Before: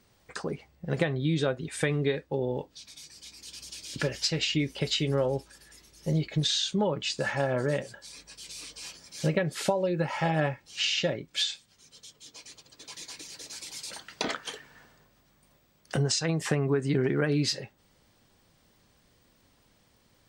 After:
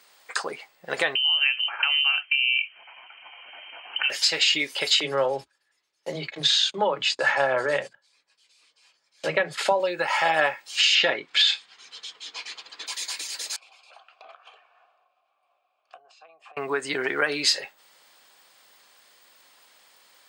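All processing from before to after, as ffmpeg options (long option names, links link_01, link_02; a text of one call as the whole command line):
ffmpeg -i in.wav -filter_complex "[0:a]asettb=1/sr,asplit=3[link_01][link_02][link_03];[link_01]atrim=end=1.154[link_04];[link_02]atrim=start=1.15:end=4.1,asetpts=PTS-STARTPTS,afade=type=in:duration=0.004:curve=qsin,afade=type=out:start_time=2.946:duration=0.004:curve=qsin,equalizer=frequency=820:width_type=o:width=0.75:gain=14,acompressor=threshold=-32dB:ratio=3:attack=3.2:release=140:knee=1:detection=peak,lowpass=frequency=2700:width_type=q:width=0.5098,lowpass=frequency=2700:width_type=q:width=0.6013,lowpass=frequency=2700:width_type=q:width=0.9,lowpass=frequency=2700:width_type=q:width=2.563,afreqshift=-3200[link_05];[link_03]atrim=start=4.096[link_06];[link_04][link_05]acrossfade=duration=0.004:curve1=hsin:curve2=qsin[link_07];[link_07][link_06]acrossfade=duration=0.004:curve1=qsin:curve2=hsin,asettb=1/sr,asplit=3[link_08][link_09][link_10];[link_08]atrim=end=5.004[link_11];[link_09]atrim=start=5:end=9.8,asetpts=PTS-STARTPTS,afade=type=in:duration=0.004:curve=qsin,afade=type=out:start_time=4.796:duration=0.004:curve=qsin,aemphasis=mode=reproduction:type=bsi,agate=range=-24dB:threshold=-41dB:ratio=16:release=100:detection=peak,acrossover=split=220[link_12][link_13];[link_12]adelay=30[link_14];[link_14][link_13]amix=inputs=2:normalize=0,atrim=end_sample=211680[link_15];[link_10]atrim=start=9.796[link_16];[link_11][link_15]acrossfade=duration=0.004:curve1=hsin:curve2=qsin[link_17];[link_17][link_16]acrossfade=duration=0.004:curve1=qsin:curve2=hsin,asettb=1/sr,asplit=3[link_18][link_19][link_20];[link_18]atrim=end=10.954[link_21];[link_19]atrim=start=10.95:end=12.87,asetpts=PTS-STARTPTS,afade=type=in:duration=0.004:curve=qsin,afade=type=out:start_time=1.916:duration=0.004:curve=qsin,lowpass=3600,bandreject=frequency=580:width=5.1,acontrast=27[link_22];[link_20]atrim=start=12.866[link_23];[link_21][link_22]acrossfade=duration=0.004:curve1=hsin:curve2=qsin[link_24];[link_24][link_23]acrossfade=duration=0.004:curve1=qsin:curve2=hsin,asettb=1/sr,asplit=3[link_25][link_26][link_27];[link_25]atrim=end=13.564[link_28];[link_26]atrim=start=13.56:end=16.57,asetpts=PTS-STARTPTS,afade=type=in:duration=0.004:curve=qsin,afade=type=out:start_time=3.006:duration=0.004:curve=qsin,highshelf=frequency=4200:gain=-8,acompressor=threshold=-40dB:ratio=8:attack=3.2:release=140:knee=1:detection=peak,asplit=3[link_29][link_30][link_31];[link_29]bandpass=frequency=730:width_type=q:width=8,volume=0dB[link_32];[link_30]bandpass=frequency=1090:width_type=q:width=8,volume=-6dB[link_33];[link_31]bandpass=frequency=2440:width_type=q:width=8,volume=-9dB[link_34];[link_32][link_33][link_34]amix=inputs=3:normalize=0[link_35];[link_27]atrim=start=16.566[link_36];[link_28][link_35]acrossfade=duration=0.004:curve1=hsin:curve2=qsin[link_37];[link_37][link_36]acrossfade=duration=0.004:curve1=qsin:curve2=hsin,highpass=840,bandreject=frequency=5800:width=10,alimiter=level_in=20dB:limit=-1dB:release=50:level=0:latency=1,volume=-8.5dB" out.wav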